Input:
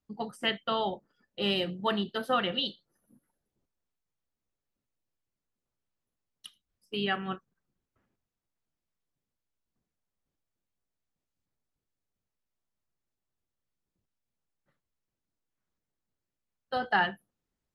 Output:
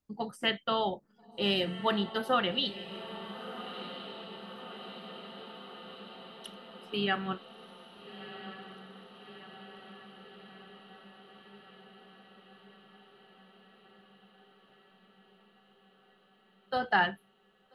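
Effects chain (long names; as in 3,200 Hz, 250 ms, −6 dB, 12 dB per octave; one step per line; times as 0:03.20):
feedback delay with all-pass diffusion 1,338 ms, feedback 70%, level −12.5 dB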